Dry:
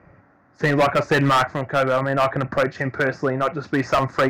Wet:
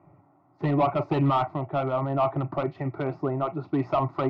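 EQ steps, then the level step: distance through air 480 m; bass shelf 73 Hz -9.5 dB; static phaser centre 330 Hz, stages 8; 0.0 dB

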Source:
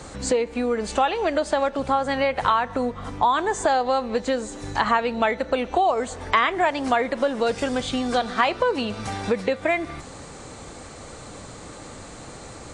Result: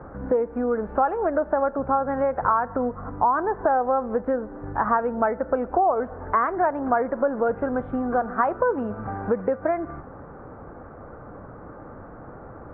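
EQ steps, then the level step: elliptic low-pass 1.5 kHz, stop band 80 dB; 0.0 dB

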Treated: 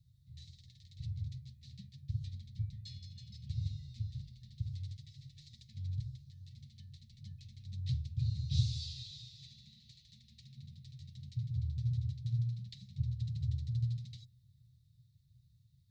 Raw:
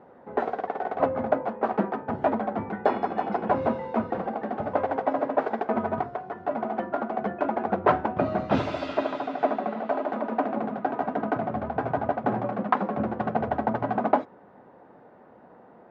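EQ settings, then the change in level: Chebyshev band-stop 130–3900 Hz, order 5; brick-wall FIR band-stop 240–1700 Hz; high-order bell 1.1 kHz +12.5 dB 2.3 oct; +6.5 dB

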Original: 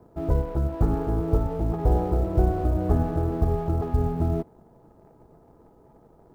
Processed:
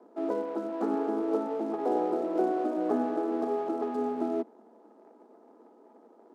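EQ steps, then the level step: steep high-pass 220 Hz 72 dB/octave; distance through air 59 m; 0.0 dB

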